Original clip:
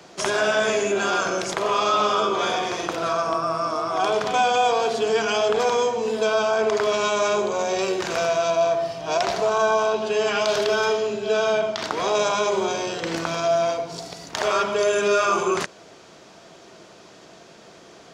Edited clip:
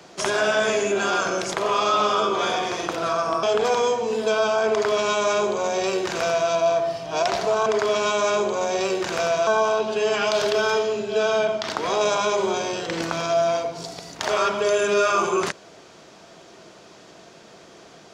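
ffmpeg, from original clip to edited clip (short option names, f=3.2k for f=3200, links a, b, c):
-filter_complex "[0:a]asplit=4[a][b][c][d];[a]atrim=end=3.432[e];[b]atrim=start=5.378:end=9.612[f];[c]atrim=start=6.638:end=8.452[g];[d]atrim=start=9.608[h];[e][f]acrossfade=d=0.004:c1=hsin:c2=hsin[i];[i][g]acrossfade=d=0.004:c1=hsin:c2=hsin[j];[j][h]acrossfade=d=0.004:c1=hsin:c2=hsin"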